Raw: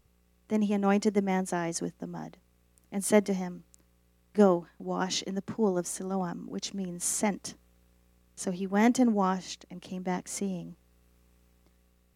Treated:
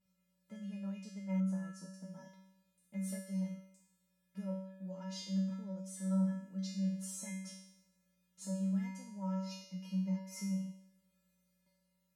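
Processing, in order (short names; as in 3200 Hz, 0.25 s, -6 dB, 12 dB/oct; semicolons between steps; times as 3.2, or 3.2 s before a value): 9.41–10.52 ripple EQ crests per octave 0.83, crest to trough 12 dB; compressor 5:1, threshold -33 dBFS, peak gain reduction 15.5 dB; resonator 190 Hz, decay 0.78 s, harmonics odd, mix 100%; 1.4–1.94 resonant high shelf 1700 Hz -6.5 dB, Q 3; gain +11 dB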